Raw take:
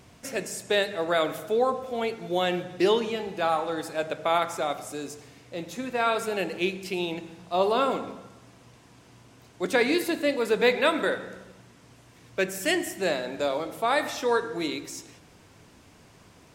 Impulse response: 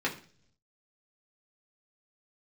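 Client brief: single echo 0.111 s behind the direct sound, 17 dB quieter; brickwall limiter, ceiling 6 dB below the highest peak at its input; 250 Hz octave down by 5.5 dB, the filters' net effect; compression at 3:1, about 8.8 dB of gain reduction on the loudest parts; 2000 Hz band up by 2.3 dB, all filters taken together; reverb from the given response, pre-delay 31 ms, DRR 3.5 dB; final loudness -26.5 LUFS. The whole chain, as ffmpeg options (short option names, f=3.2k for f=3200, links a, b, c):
-filter_complex "[0:a]equalizer=f=250:t=o:g=-8.5,equalizer=f=2k:t=o:g=3,acompressor=threshold=-29dB:ratio=3,alimiter=limit=-22dB:level=0:latency=1,aecho=1:1:111:0.141,asplit=2[a][b];[1:a]atrim=start_sample=2205,adelay=31[c];[b][c]afir=irnorm=-1:irlink=0,volume=-12dB[d];[a][d]amix=inputs=2:normalize=0,volume=6.5dB"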